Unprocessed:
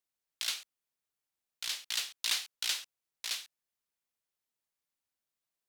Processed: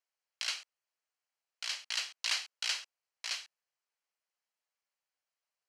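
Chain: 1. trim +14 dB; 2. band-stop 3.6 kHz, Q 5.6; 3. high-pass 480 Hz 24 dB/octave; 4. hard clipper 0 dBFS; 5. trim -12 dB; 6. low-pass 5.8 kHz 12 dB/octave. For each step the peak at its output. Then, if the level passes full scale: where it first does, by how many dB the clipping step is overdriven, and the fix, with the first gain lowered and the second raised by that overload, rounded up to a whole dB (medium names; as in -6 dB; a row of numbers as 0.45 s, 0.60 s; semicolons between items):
-3.0 dBFS, -3.5 dBFS, -3.5 dBFS, -3.5 dBFS, -15.5 dBFS, -18.0 dBFS; nothing clips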